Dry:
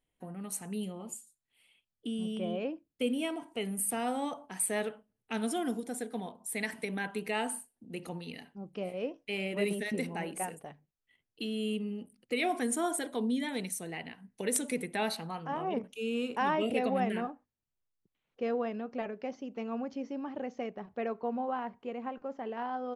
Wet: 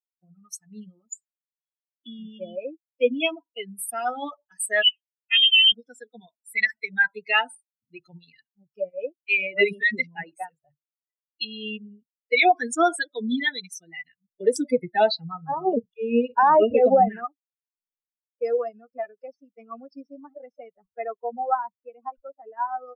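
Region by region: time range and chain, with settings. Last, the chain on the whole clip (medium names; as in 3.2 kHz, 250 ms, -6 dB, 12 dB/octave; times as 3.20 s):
4.82–5.72 s: frequency inversion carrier 3.4 kHz + high-pass 140 Hz 6 dB/octave
14.14–17.08 s: tilt shelf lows +5 dB, about 900 Hz + doubling 34 ms -12 dB
whole clip: expander on every frequency bin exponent 3; three-band isolator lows -16 dB, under 490 Hz, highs -20 dB, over 4.6 kHz; loudness maximiser +31.5 dB; trim -8 dB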